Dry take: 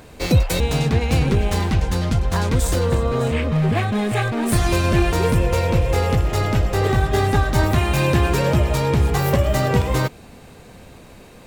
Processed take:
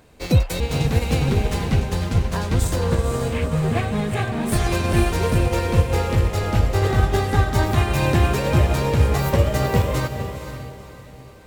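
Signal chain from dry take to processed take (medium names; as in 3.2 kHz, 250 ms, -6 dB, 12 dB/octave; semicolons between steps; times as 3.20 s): echo that smears into a reverb 490 ms, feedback 49%, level -6 dB; upward expansion 1.5:1, over -29 dBFS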